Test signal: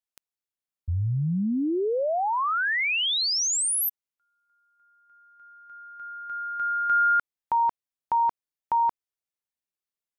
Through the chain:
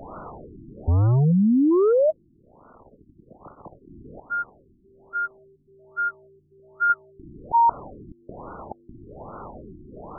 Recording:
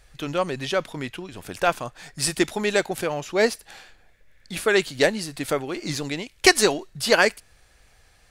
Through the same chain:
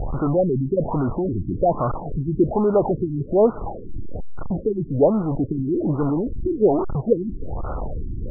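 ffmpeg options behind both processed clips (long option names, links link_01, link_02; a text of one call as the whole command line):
ffmpeg -i in.wav -af "aeval=exprs='val(0)+0.5*0.112*sgn(val(0))':channel_layout=same,lowpass=2100,afftfilt=real='re*lt(b*sr/1024,360*pow(1500/360,0.5+0.5*sin(2*PI*1.2*pts/sr)))':imag='im*lt(b*sr/1024,360*pow(1500/360,0.5+0.5*sin(2*PI*1.2*pts/sr)))':win_size=1024:overlap=0.75,volume=2dB" out.wav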